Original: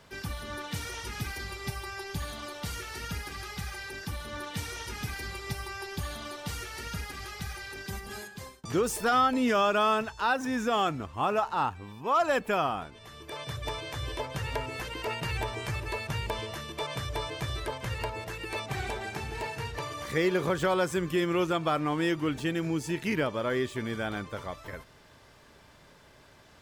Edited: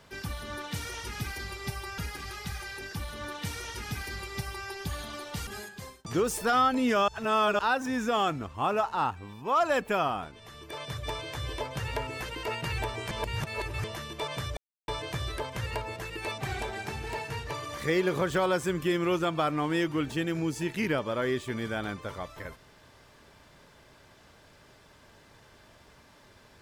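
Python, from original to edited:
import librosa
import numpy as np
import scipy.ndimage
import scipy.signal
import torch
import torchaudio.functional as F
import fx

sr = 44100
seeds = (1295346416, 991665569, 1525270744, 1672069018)

y = fx.edit(x, sr, fx.cut(start_s=1.98, length_s=1.12),
    fx.cut(start_s=6.59, length_s=1.47),
    fx.reverse_span(start_s=9.67, length_s=0.51),
    fx.reverse_span(start_s=15.7, length_s=0.73),
    fx.insert_silence(at_s=17.16, length_s=0.31), tone=tone)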